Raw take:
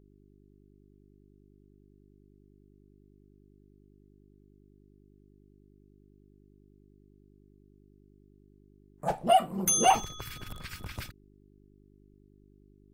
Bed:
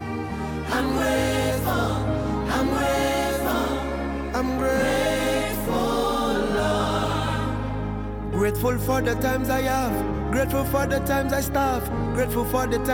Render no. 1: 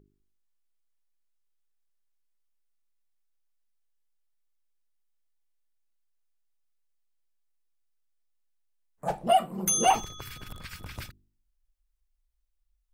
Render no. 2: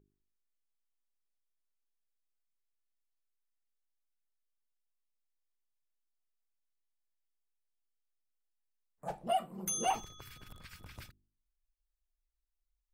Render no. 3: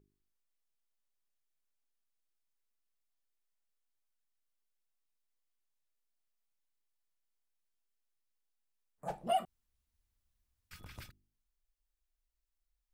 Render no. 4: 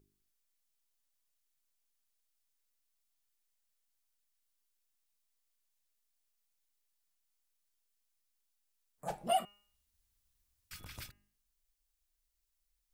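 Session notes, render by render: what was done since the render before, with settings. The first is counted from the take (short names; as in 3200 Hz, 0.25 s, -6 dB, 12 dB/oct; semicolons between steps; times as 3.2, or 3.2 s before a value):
de-hum 50 Hz, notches 8
gain -10 dB
9.45–10.71 room tone
high shelf 3000 Hz +8.5 dB; de-hum 203.9 Hz, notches 14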